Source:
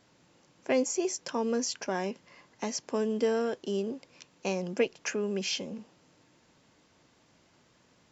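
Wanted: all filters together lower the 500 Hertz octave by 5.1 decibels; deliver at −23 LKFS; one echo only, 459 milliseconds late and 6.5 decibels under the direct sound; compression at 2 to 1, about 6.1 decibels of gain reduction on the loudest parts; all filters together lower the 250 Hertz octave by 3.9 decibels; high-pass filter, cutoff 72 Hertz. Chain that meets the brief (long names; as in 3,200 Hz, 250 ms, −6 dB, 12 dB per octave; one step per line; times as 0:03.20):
high-pass filter 72 Hz
parametric band 250 Hz −3.5 dB
parametric band 500 Hz −5 dB
downward compressor 2 to 1, threshold −37 dBFS
single-tap delay 459 ms −6.5 dB
level +16 dB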